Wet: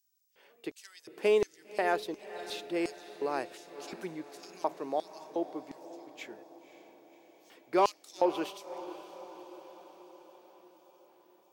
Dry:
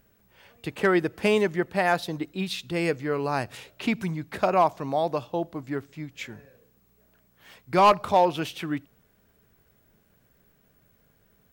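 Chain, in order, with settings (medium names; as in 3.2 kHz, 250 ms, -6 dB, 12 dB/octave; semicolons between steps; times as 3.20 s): LFO high-pass square 1.4 Hz 370–5700 Hz; echo that smears into a reverb 544 ms, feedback 59%, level -14 dB; trim -8.5 dB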